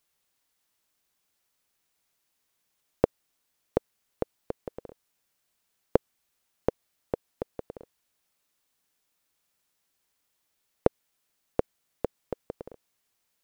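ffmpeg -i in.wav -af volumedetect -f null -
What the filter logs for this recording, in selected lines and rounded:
mean_volume: -38.1 dB
max_volume: -3.1 dB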